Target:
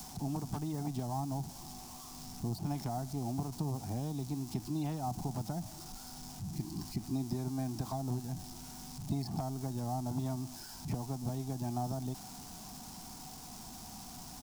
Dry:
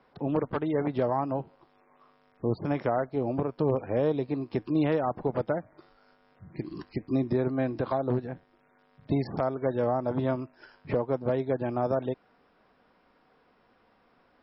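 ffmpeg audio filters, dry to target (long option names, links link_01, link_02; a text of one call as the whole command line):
ffmpeg -i in.wav -filter_complex "[0:a]aeval=exprs='val(0)+0.5*0.0126*sgn(val(0))':channel_layout=same,acrossover=split=330|3100[link_01][link_02][link_03];[link_01]acompressor=threshold=-34dB:ratio=4[link_04];[link_02]acompressor=threshold=-28dB:ratio=4[link_05];[link_03]acompressor=threshold=-58dB:ratio=4[link_06];[link_04][link_05][link_06]amix=inputs=3:normalize=0,firequalizer=gain_entry='entry(190,0);entry(520,-26);entry(740,-4);entry(1200,-16);entry(1800,-19);entry(5400,10)':delay=0.05:min_phase=1,volume=1dB" out.wav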